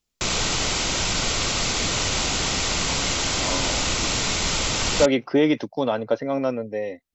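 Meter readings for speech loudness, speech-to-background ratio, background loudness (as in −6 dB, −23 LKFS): −24.0 LKFS, −1.5 dB, −22.5 LKFS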